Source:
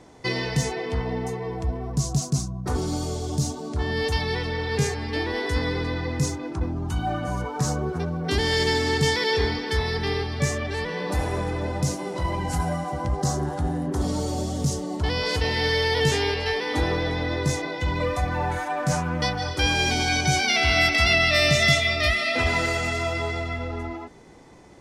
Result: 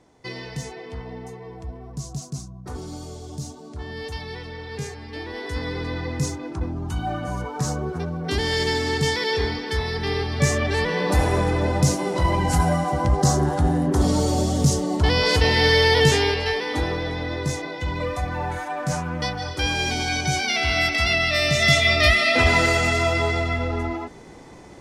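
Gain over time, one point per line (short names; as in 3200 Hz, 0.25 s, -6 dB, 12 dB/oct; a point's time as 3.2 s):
5.08 s -8 dB
5.97 s -0.5 dB
9.95 s -0.5 dB
10.63 s +6 dB
15.9 s +6 dB
16.95 s -1.5 dB
21.5 s -1.5 dB
21.91 s +5.5 dB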